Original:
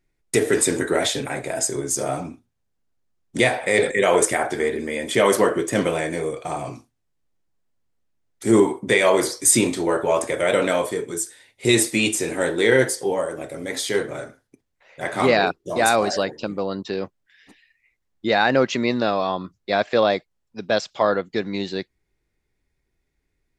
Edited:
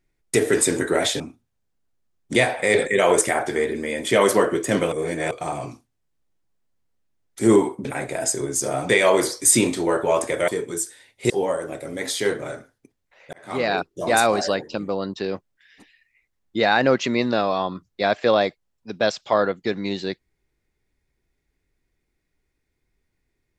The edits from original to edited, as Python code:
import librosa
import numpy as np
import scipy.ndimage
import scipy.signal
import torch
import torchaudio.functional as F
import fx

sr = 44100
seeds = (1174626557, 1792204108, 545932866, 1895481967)

y = fx.edit(x, sr, fx.move(start_s=1.2, length_s=1.04, to_s=8.89),
    fx.reverse_span(start_s=5.96, length_s=0.39),
    fx.cut(start_s=10.48, length_s=0.4),
    fx.cut(start_s=11.7, length_s=1.29),
    fx.fade_in_span(start_s=15.02, length_s=0.6), tone=tone)